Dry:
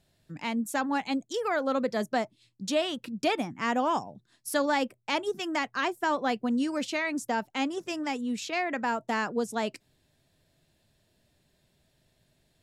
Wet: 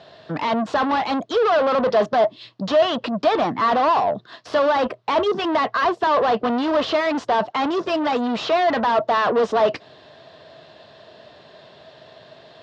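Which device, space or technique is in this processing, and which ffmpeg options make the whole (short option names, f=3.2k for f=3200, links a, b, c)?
overdrive pedal into a guitar cabinet: -filter_complex "[0:a]asplit=2[a][b];[b]highpass=f=720:p=1,volume=36dB,asoftclip=type=tanh:threshold=-13.5dB[c];[a][c]amix=inputs=2:normalize=0,lowpass=f=5k:p=1,volume=-6dB,highpass=77,equalizer=f=82:t=q:w=4:g=4,equalizer=f=130:t=q:w=4:g=3,equalizer=f=450:t=q:w=4:g=6,equalizer=f=650:t=q:w=4:g=9,equalizer=f=1.1k:t=q:w=4:g=8,equalizer=f=2.3k:t=q:w=4:g=-7,lowpass=f=4.4k:w=0.5412,lowpass=f=4.4k:w=1.3066,volume=-3dB"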